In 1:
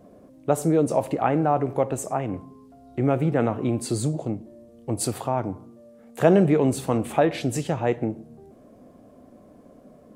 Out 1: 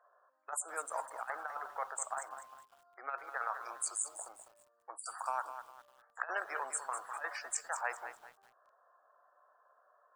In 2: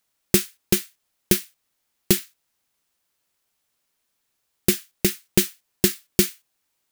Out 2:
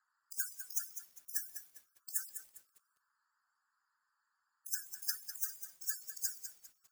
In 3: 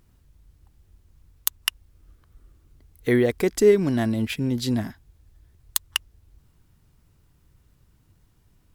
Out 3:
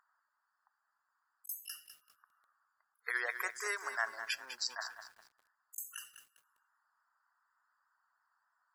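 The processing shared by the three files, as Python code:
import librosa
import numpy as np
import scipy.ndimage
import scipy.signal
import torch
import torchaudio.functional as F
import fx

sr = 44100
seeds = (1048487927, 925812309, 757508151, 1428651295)

y = fx.wiener(x, sr, points=15)
y = scipy.signal.sosfilt(scipy.signal.butter(4, 1200.0, 'highpass', fs=sr, output='sos'), y)
y = fx.band_shelf(y, sr, hz=2800.0, db=-12.0, octaves=1.2)
y = fx.rev_double_slope(y, sr, seeds[0], early_s=0.4, late_s=1.7, knee_db=-27, drr_db=19.5)
y = fx.spec_topn(y, sr, count=64)
y = 10.0 ** (-8.5 / 20.0) * np.tanh(y / 10.0 ** (-8.5 / 20.0))
y = fx.over_compress(y, sr, threshold_db=-39.0, ratio=-0.5)
y = fx.echo_crushed(y, sr, ms=201, feedback_pct=35, bits=10, wet_db=-9.5)
y = y * 10.0 ** (3.0 / 20.0)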